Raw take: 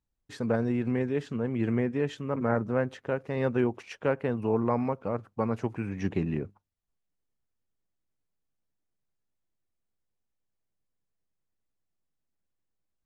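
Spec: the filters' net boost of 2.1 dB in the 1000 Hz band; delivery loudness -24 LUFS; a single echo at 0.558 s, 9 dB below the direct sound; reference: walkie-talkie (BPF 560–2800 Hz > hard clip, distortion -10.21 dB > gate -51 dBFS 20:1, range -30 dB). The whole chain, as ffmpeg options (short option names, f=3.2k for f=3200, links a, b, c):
-af "highpass=560,lowpass=2.8k,equalizer=f=1k:t=o:g=3.5,aecho=1:1:558:0.355,asoftclip=type=hard:threshold=-27dB,agate=range=-30dB:threshold=-51dB:ratio=20,volume=12.5dB"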